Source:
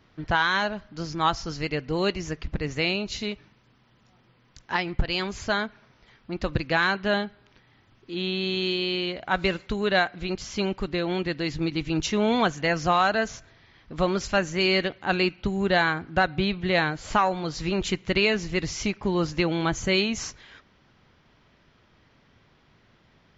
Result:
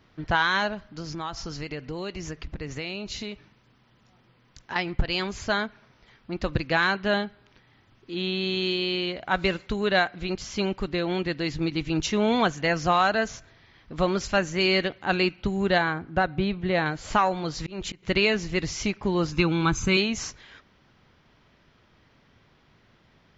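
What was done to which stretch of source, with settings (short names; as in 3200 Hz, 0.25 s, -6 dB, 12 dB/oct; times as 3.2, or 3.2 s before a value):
0.74–4.76 compressor 4:1, threshold -30 dBFS
15.78–16.86 high shelf 2000 Hz -8.5 dB
17.44–18.03 auto swell 0.278 s
19.32–19.97 comb 0.8 ms, depth 68%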